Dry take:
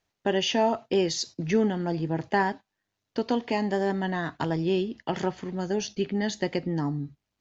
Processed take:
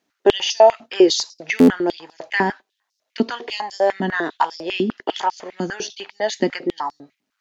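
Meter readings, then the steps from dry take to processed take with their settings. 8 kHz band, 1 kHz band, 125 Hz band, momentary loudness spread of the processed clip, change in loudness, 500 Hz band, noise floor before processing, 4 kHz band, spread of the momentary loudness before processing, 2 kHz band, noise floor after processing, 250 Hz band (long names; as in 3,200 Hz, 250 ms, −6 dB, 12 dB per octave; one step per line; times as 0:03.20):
can't be measured, +8.0 dB, −3.0 dB, 14 LU, +7.5 dB, +8.5 dB, −83 dBFS, +8.0 dB, 7 LU, +8.5 dB, −77 dBFS, +6.0 dB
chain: buffer that repeats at 0:01.58, samples 512, times 8
high-pass on a step sequencer 10 Hz 250–5,200 Hz
level +5 dB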